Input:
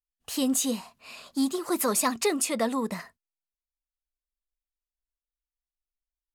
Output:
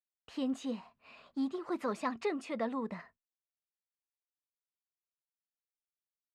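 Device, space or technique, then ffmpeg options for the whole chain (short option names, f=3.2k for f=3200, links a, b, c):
hearing-loss simulation: -af "lowpass=2.5k,agate=range=-33dB:threshold=-54dB:ratio=3:detection=peak,volume=-8dB"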